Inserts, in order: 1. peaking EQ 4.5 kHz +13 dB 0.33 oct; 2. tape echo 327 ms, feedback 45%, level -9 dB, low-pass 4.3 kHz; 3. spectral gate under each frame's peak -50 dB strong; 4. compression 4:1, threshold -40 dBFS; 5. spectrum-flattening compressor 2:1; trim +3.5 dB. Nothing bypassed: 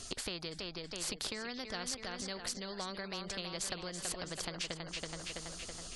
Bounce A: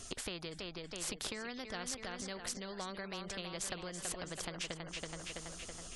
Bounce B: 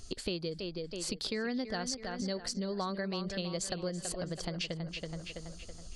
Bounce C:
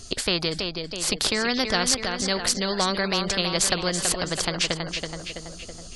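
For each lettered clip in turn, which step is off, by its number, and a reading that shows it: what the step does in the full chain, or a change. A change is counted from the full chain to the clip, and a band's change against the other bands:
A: 1, 4 kHz band -2.5 dB; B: 5, 250 Hz band +6.5 dB; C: 4, mean gain reduction 11.0 dB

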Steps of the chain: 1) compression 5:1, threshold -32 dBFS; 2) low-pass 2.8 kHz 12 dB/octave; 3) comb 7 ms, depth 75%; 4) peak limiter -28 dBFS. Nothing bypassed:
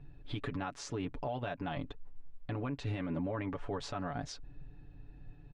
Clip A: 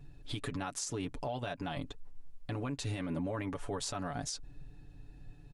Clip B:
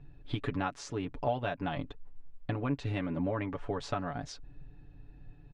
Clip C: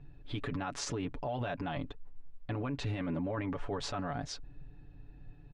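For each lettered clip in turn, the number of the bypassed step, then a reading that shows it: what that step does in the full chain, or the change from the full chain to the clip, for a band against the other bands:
2, 8 kHz band +11.0 dB; 4, crest factor change +7.0 dB; 1, mean gain reduction 6.5 dB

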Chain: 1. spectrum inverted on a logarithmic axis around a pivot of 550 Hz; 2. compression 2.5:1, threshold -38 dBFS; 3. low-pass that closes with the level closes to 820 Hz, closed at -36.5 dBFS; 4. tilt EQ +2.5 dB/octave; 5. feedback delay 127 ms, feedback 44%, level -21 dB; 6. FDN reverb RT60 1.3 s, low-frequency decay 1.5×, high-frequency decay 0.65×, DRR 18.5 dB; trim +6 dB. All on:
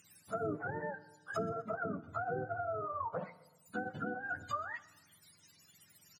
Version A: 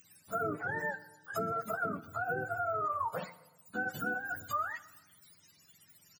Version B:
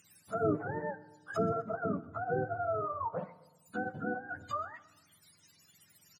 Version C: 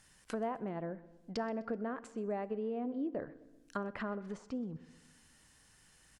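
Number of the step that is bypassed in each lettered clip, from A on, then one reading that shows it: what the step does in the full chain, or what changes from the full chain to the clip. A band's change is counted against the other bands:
3, 2 kHz band +5.5 dB; 2, momentary loudness spread change +4 LU; 1, 250 Hz band +8.5 dB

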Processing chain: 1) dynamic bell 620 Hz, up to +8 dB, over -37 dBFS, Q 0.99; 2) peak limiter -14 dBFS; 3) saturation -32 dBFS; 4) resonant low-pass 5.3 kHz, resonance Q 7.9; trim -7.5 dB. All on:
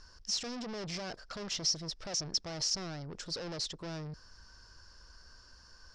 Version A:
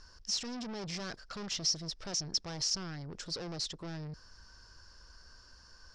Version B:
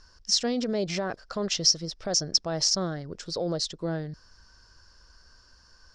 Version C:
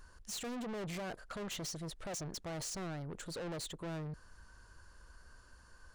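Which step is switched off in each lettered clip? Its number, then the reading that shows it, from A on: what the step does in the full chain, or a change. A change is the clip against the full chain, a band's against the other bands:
1, 500 Hz band -2.5 dB; 3, distortion -5 dB; 4, 4 kHz band -11.5 dB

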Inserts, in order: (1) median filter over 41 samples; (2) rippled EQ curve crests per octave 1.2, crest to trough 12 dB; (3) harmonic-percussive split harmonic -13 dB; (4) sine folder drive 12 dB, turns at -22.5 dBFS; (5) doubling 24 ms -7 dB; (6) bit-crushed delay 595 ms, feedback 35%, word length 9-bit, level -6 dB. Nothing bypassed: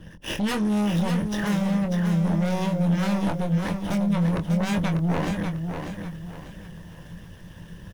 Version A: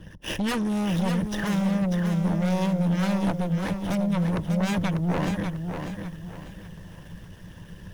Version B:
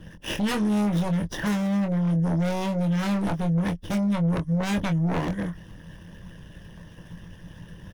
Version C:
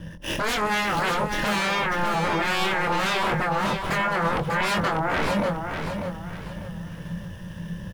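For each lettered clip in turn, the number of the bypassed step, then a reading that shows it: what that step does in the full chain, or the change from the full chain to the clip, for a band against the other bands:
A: 5, crest factor change -1.5 dB; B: 6, crest factor change -3.5 dB; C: 3, momentary loudness spread change -7 LU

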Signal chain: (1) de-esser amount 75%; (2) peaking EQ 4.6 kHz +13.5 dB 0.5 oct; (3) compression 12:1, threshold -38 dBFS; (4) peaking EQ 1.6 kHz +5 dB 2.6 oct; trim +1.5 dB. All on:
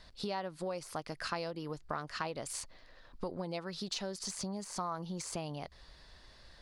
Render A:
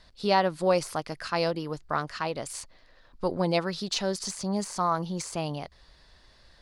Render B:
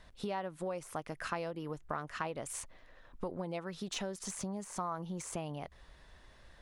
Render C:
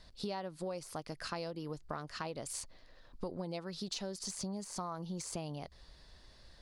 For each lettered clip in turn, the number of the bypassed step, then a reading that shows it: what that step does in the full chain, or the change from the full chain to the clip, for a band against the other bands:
3, mean gain reduction 6.5 dB; 2, 4 kHz band -5.0 dB; 4, 2 kHz band -3.5 dB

